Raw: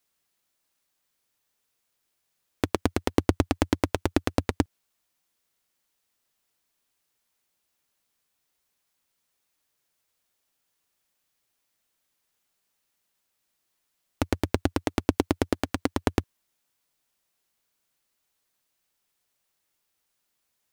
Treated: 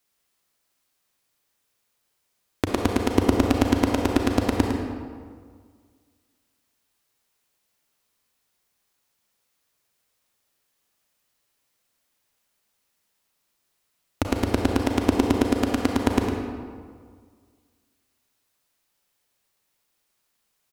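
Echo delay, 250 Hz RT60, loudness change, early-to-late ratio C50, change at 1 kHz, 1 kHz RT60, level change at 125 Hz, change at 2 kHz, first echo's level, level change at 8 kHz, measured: 105 ms, 1.9 s, +4.5 dB, 1.5 dB, +4.5 dB, 1.8 s, +3.5 dB, +3.5 dB, -8.5 dB, +3.0 dB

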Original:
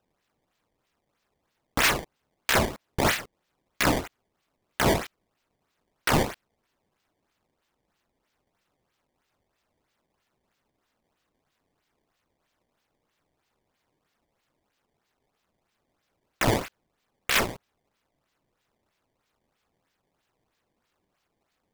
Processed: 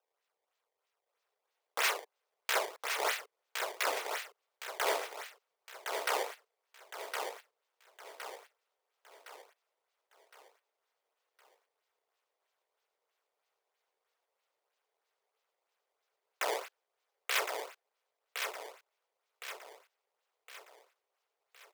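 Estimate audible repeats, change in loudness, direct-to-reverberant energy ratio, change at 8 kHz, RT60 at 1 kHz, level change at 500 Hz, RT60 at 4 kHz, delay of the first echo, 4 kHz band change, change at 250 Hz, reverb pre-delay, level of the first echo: 5, -10.5 dB, no reverb, -7.0 dB, no reverb, -7.5 dB, no reverb, 1063 ms, -7.0 dB, -25.5 dB, no reverb, -5.5 dB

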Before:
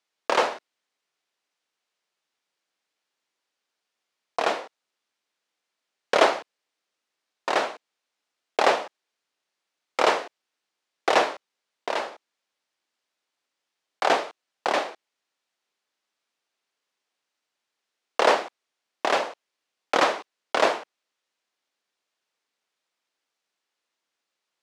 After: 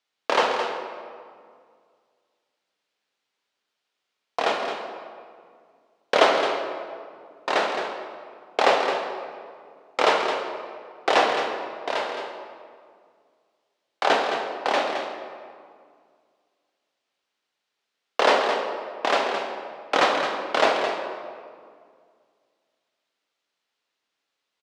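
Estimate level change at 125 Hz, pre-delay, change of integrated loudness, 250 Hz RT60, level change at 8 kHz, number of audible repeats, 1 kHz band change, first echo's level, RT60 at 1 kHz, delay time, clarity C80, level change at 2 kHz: no reading, 3 ms, +0.5 dB, 2.4 s, -1.0 dB, 1, +2.5 dB, -8.5 dB, 2.0 s, 216 ms, 4.0 dB, +2.5 dB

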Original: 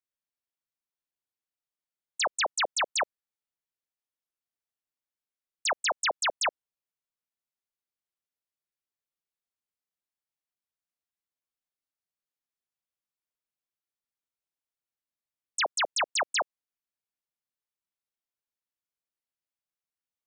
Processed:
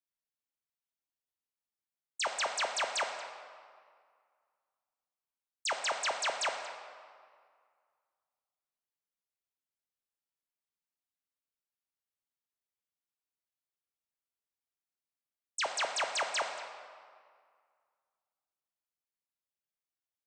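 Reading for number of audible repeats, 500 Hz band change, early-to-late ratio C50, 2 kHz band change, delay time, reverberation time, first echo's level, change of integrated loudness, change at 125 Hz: 1, -4.0 dB, 5.5 dB, -4.5 dB, 233 ms, 2.0 s, -17.0 dB, -5.0 dB, no reading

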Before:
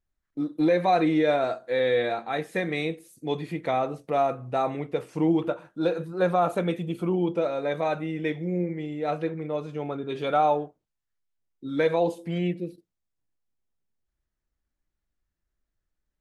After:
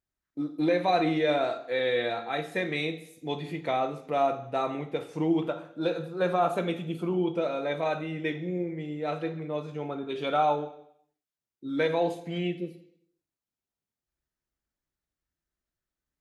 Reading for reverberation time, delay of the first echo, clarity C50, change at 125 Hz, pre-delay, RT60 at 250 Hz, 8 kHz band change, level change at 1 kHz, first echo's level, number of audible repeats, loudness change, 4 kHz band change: 0.70 s, no echo, 12.5 dB, -3.5 dB, 3 ms, 0.70 s, no reading, -2.5 dB, no echo, no echo, -2.5 dB, +1.5 dB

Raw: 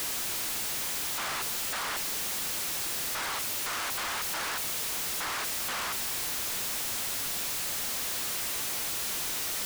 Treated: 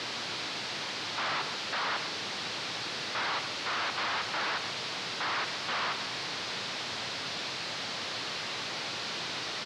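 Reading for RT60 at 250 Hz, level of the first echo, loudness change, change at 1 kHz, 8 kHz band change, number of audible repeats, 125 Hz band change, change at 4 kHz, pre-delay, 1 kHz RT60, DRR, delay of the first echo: no reverb, -10.5 dB, -3.0 dB, +2.5 dB, -12.5 dB, 1, +1.5 dB, +1.5 dB, no reverb, no reverb, no reverb, 128 ms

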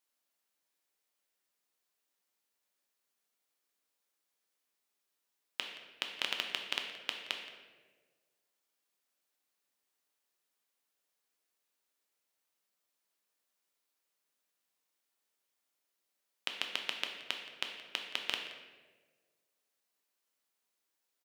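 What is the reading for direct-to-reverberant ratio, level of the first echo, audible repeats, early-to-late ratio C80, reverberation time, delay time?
2.5 dB, -17.0 dB, 1, 7.0 dB, 1.5 s, 173 ms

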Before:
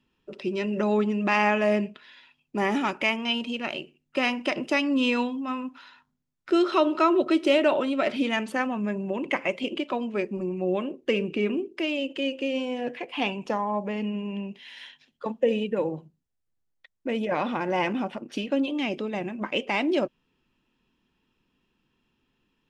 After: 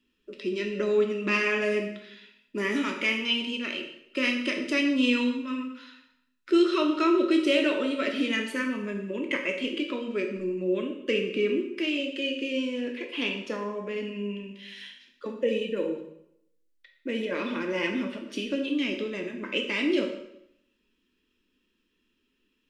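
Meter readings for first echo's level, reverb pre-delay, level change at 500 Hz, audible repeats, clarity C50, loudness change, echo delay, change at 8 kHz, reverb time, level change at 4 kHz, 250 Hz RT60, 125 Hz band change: no echo, 5 ms, -1.5 dB, no echo, 6.5 dB, -1.0 dB, no echo, no reading, 0.75 s, +1.5 dB, 0.80 s, no reading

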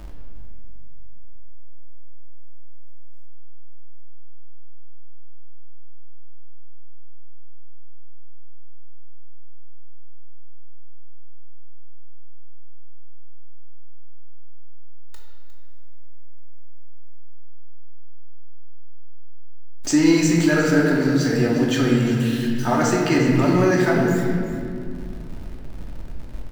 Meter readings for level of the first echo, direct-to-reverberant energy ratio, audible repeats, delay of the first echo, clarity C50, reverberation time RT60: -13.5 dB, -3.0 dB, 1, 356 ms, 1.0 dB, 2.3 s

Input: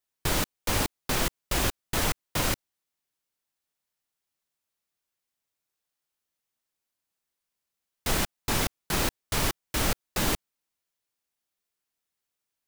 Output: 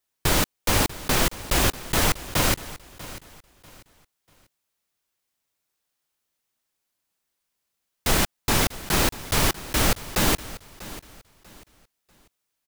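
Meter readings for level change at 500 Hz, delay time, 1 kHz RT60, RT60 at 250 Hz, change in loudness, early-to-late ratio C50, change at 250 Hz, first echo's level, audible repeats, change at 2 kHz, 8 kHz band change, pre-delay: +5.5 dB, 642 ms, no reverb, no reverb, +5.5 dB, no reverb, +5.5 dB, -17.0 dB, 2, +5.5 dB, +5.5 dB, no reverb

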